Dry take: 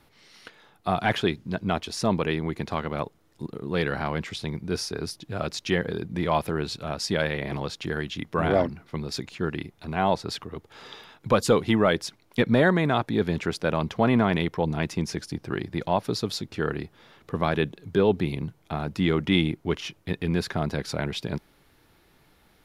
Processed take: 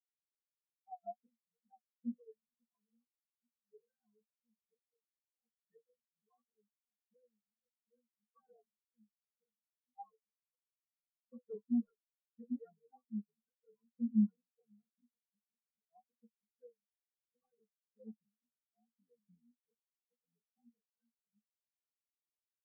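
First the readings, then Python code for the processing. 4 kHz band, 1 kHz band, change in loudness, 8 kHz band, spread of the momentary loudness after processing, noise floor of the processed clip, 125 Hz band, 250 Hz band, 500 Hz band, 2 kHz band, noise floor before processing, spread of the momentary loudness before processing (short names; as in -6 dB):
under -40 dB, -30.0 dB, -12.5 dB, under -40 dB, 23 LU, under -85 dBFS, under -25 dB, -16.0 dB, -33.0 dB, under -40 dB, -62 dBFS, 12 LU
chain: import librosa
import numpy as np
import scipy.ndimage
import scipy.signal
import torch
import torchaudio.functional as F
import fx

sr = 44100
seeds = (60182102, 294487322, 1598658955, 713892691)

y = fx.high_shelf(x, sr, hz=3500.0, db=-11.0)
y = fx.stiff_resonator(y, sr, f0_hz=220.0, decay_s=0.21, stiffness=0.03)
y = 10.0 ** (-24.0 / 20.0) * (np.abs((y / 10.0 ** (-24.0 / 20.0) + 3.0) % 4.0 - 2.0) - 1.0)
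y = fx.wow_flutter(y, sr, seeds[0], rate_hz=2.1, depth_cents=130.0)
y = fx.spectral_expand(y, sr, expansion=4.0)
y = y * librosa.db_to_amplitude(2.5)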